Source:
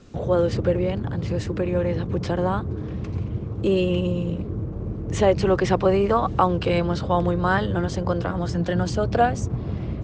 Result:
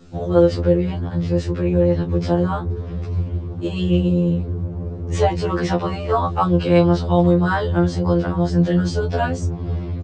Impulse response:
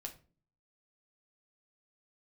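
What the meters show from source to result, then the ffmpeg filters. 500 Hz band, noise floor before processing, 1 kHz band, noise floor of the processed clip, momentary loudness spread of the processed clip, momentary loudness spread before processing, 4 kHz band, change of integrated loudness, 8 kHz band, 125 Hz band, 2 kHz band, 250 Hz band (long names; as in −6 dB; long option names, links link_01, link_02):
+2.5 dB, −32 dBFS, +0.5 dB, −29 dBFS, 10 LU, 9 LU, +1.5 dB, +3.5 dB, 0.0 dB, +5.0 dB, +0.5 dB, +5.5 dB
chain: -filter_complex "[0:a]asplit=2[link_01][link_02];[link_02]adelay=23,volume=-8.5dB[link_03];[link_01][link_03]amix=inputs=2:normalize=0,afftfilt=real='re*2*eq(mod(b,4),0)':imag='im*2*eq(mod(b,4),0)':win_size=2048:overlap=0.75,volume=3dB"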